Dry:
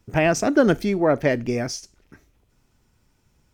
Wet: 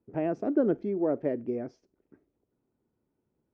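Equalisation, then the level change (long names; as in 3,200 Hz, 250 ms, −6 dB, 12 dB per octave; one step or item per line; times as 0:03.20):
resonant band-pass 360 Hz, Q 1.4
high-frequency loss of the air 100 metres
−5.0 dB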